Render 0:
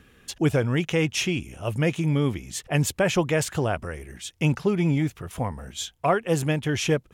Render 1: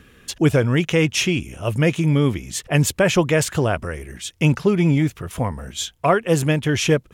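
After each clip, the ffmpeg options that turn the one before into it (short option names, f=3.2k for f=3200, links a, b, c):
-af "equalizer=f=790:t=o:w=0.24:g=-4.5,volume=5.5dB"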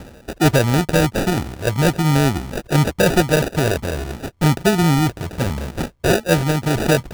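-af "areverse,acompressor=mode=upward:threshold=-19dB:ratio=2.5,areverse,acrusher=samples=41:mix=1:aa=0.000001,volume=1.5dB"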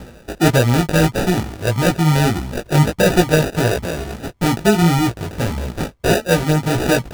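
-af "flanger=delay=16:depth=3.4:speed=1.6,volume=4dB"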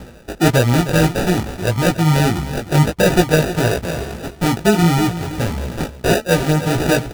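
-af "aecho=1:1:311:0.237"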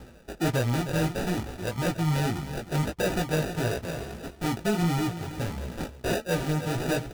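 -af "asoftclip=type=tanh:threshold=-8dB,flanger=delay=2.3:depth=6.6:regen=-66:speed=0.67:shape=triangular,volume=-6dB"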